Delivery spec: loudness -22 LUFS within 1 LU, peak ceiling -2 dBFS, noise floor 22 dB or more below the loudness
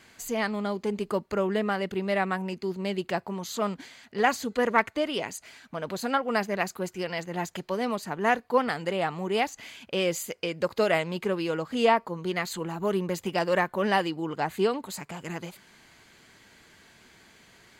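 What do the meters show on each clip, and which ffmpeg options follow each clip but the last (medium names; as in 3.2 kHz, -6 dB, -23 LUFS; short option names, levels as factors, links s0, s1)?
loudness -28.5 LUFS; peak level -7.0 dBFS; loudness target -22.0 LUFS
-> -af "volume=2.11,alimiter=limit=0.794:level=0:latency=1"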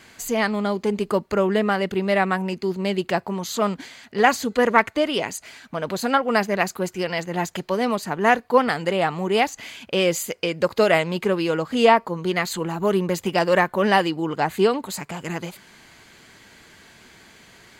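loudness -22.0 LUFS; peak level -2.0 dBFS; noise floor -51 dBFS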